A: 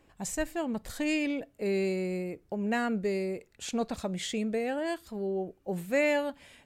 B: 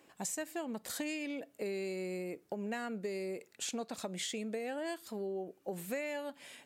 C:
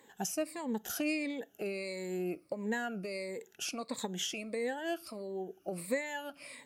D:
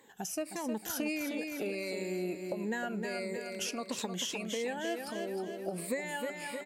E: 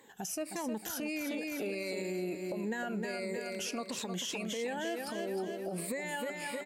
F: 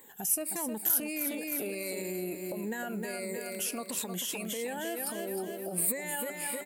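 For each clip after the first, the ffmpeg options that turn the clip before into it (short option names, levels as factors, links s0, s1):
-af "highpass=220,highshelf=f=4600:g=6,acompressor=threshold=0.0141:ratio=6,volume=1.12"
-af "afftfilt=real='re*pow(10,15/40*sin(2*PI*(1*log(max(b,1)*sr/1024/100)/log(2)-(-1.5)*(pts-256)/sr)))':imag='im*pow(10,15/40*sin(2*PI*(1*log(max(b,1)*sr/1024/100)/log(2)-(-1.5)*(pts-256)/sr)))':win_size=1024:overlap=0.75"
-af "dynaudnorm=f=130:g=5:m=3.16,aecho=1:1:310|620|930|1240|1550:0.447|0.197|0.0865|0.0381|0.0167,acompressor=threshold=0.00891:ratio=2"
-af "alimiter=level_in=1.88:limit=0.0631:level=0:latency=1:release=42,volume=0.531,volume=1.19"
-af "aexciter=amount=7:drive=4.4:freq=8300"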